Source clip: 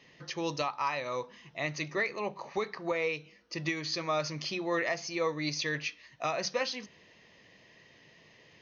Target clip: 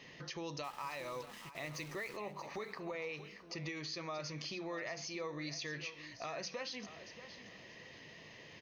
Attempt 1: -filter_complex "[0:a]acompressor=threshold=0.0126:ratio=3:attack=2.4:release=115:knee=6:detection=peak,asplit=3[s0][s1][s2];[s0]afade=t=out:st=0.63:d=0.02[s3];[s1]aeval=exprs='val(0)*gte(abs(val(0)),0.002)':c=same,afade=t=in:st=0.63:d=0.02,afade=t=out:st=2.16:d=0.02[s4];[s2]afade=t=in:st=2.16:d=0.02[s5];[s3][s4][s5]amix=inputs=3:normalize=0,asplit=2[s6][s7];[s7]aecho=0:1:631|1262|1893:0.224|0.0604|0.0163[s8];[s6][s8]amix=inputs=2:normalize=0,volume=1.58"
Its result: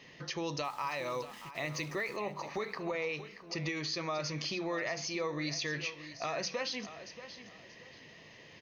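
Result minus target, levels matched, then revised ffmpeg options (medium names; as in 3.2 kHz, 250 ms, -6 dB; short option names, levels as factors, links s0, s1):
compression: peak gain reduction -6.5 dB
-filter_complex "[0:a]acompressor=threshold=0.00398:ratio=3:attack=2.4:release=115:knee=6:detection=peak,asplit=3[s0][s1][s2];[s0]afade=t=out:st=0.63:d=0.02[s3];[s1]aeval=exprs='val(0)*gte(abs(val(0)),0.002)':c=same,afade=t=in:st=0.63:d=0.02,afade=t=out:st=2.16:d=0.02[s4];[s2]afade=t=in:st=2.16:d=0.02[s5];[s3][s4][s5]amix=inputs=3:normalize=0,asplit=2[s6][s7];[s7]aecho=0:1:631|1262|1893:0.224|0.0604|0.0163[s8];[s6][s8]amix=inputs=2:normalize=0,volume=1.58"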